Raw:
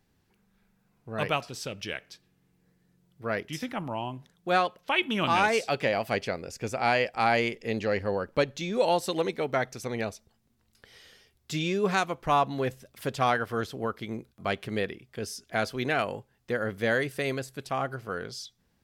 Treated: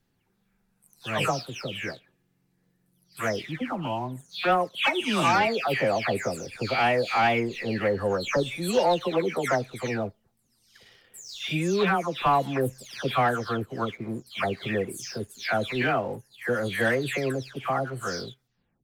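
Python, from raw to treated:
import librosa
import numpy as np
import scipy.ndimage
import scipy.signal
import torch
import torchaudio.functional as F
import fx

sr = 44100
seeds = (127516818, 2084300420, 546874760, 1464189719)

y = fx.spec_delay(x, sr, highs='early', ms=360)
y = fx.leveller(y, sr, passes=1)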